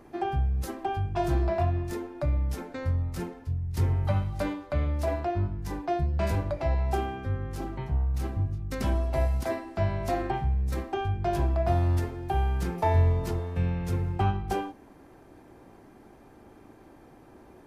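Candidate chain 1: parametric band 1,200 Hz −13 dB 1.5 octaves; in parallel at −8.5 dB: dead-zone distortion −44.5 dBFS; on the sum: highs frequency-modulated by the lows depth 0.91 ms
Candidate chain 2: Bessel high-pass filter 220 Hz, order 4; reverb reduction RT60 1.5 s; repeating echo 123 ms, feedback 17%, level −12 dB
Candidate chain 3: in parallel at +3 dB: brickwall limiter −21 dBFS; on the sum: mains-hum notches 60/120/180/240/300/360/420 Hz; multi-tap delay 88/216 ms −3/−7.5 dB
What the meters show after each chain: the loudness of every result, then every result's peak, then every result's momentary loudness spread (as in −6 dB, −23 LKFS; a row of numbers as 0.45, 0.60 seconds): −28.0, −35.5, −21.5 LKFS; −10.5, −15.0, −7.0 dBFS; 7, 10, 5 LU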